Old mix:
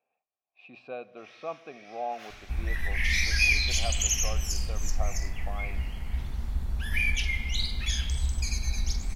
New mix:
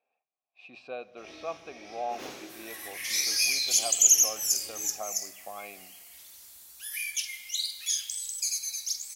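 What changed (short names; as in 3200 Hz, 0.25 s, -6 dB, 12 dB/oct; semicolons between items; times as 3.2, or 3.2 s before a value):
first sound: remove HPF 1200 Hz 24 dB/oct; second sound: add differentiator; master: add tone controls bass -6 dB, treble +11 dB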